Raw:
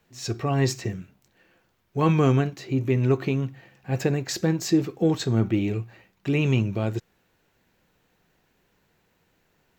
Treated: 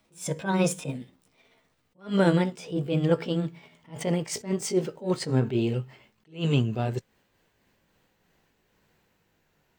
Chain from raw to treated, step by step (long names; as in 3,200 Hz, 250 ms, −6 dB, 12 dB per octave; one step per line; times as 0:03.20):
pitch glide at a constant tempo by +5.5 semitones ending unshifted
level that may rise only so fast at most 210 dB per second